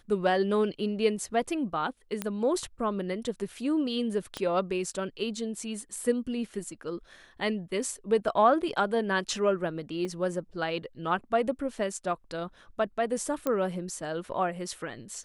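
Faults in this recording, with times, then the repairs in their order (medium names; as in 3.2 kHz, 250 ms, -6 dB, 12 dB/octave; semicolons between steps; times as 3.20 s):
2.22 s: pop -15 dBFS
4.37 s: pop -18 dBFS
10.05 s: dropout 3.3 ms
13.47 s: pop -15 dBFS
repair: de-click; interpolate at 10.05 s, 3.3 ms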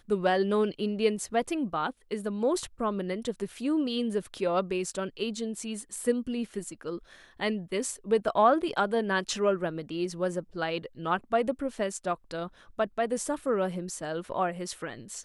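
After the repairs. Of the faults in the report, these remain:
4.37 s: pop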